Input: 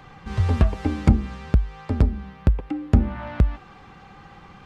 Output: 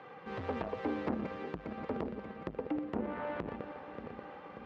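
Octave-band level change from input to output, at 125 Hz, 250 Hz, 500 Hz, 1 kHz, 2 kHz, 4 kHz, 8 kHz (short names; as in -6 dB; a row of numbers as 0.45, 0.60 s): -26.0 dB, -12.0 dB, -4.0 dB, -5.5 dB, -7.0 dB, -12.0 dB, n/a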